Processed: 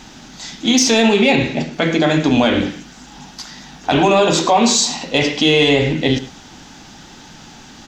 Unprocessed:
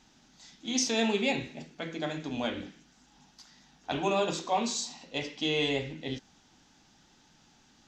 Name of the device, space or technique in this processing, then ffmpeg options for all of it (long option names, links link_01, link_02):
mastering chain: -filter_complex "[0:a]asettb=1/sr,asplit=3[link_01][link_02][link_03];[link_01]atrim=end=1.194[link_04];[link_02]atrim=start=1.19:end=1.73,asetpts=PTS-STARTPTS,afade=type=in:duration=0.004:curve=qsin,afade=type=out:start_time=0.536:duration=0.004:curve=qsin,lowpass=6500[link_05];[link_03]atrim=start=1.726[link_06];[link_04][link_05]acrossfade=duration=0.004:curve1=hsin:curve2=qsin[link_07];[link_07][link_06]acrossfade=duration=0.004:curve1=qsin:curve2=hsin,equalizer=frequency=5700:width_type=o:width=1.4:gain=-2,asplit=2[link_08][link_09];[link_09]adelay=105,volume=-18dB,highshelf=frequency=4000:gain=-2.36[link_10];[link_08][link_10]amix=inputs=2:normalize=0,acompressor=threshold=-34dB:ratio=1.5,asoftclip=type=tanh:threshold=-21dB,alimiter=level_in=27dB:limit=-1dB:release=50:level=0:latency=1,volume=-4dB"